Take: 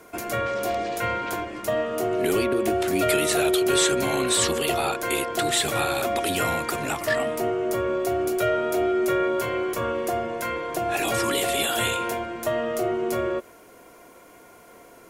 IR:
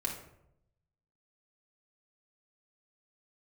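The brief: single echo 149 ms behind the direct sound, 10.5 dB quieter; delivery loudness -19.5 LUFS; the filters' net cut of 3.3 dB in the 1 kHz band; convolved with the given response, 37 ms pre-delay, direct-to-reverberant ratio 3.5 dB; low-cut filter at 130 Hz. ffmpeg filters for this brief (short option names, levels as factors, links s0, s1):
-filter_complex "[0:a]highpass=130,equalizer=f=1000:t=o:g=-5.5,aecho=1:1:149:0.299,asplit=2[s0][s1];[1:a]atrim=start_sample=2205,adelay=37[s2];[s1][s2]afir=irnorm=-1:irlink=0,volume=0.473[s3];[s0][s3]amix=inputs=2:normalize=0,volume=1.68"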